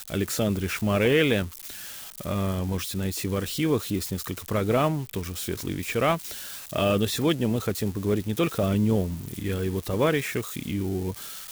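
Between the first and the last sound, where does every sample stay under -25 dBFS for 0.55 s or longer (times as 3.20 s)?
1.44–2.27 s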